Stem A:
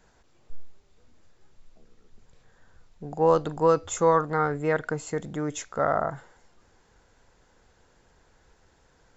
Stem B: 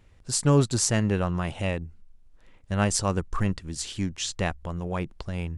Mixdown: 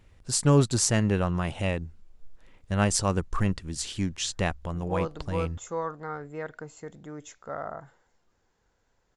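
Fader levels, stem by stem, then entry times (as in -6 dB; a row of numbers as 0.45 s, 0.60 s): -11.0 dB, 0.0 dB; 1.70 s, 0.00 s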